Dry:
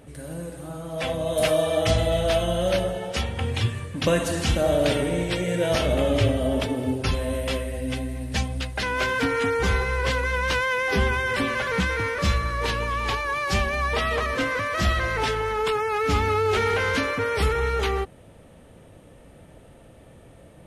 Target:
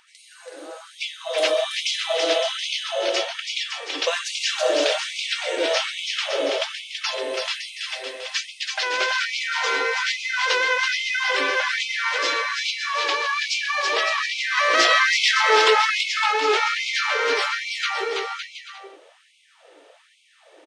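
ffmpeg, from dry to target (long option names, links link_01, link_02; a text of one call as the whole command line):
ffmpeg -i in.wav -filter_complex "[0:a]lowpass=frequency=5700:width=0.5412,lowpass=frequency=5700:width=1.3066,aemphasis=mode=production:type=75kf,asettb=1/sr,asplit=3[link_01][link_02][link_03];[link_01]atrim=end=14.574[link_04];[link_02]atrim=start=14.57:end=15.99,asetpts=PTS-STARTPTS,afade=type=in:duration=0.004:curve=qsin,afade=type=out:start_time=1.416:duration=0.004:curve=qsin,acontrast=72[link_05];[link_03]atrim=start=15.986[link_06];[link_04][link_05]acrossfade=duration=0.004:curve1=hsin:curve2=qsin[link_07];[link_07][link_06]acrossfade=duration=0.004:curve1=qsin:curve2=hsin,aecho=1:1:330|561|722.7|835.9|915.1:0.631|0.398|0.251|0.158|0.1,afftfilt=real='re*gte(b*sr/1024,280*pow(2100/280,0.5+0.5*sin(2*PI*1.2*pts/sr)))':imag='im*gte(b*sr/1024,280*pow(2100/280,0.5+0.5*sin(2*PI*1.2*pts/sr)))':win_size=1024:overlap=0.75" out.wav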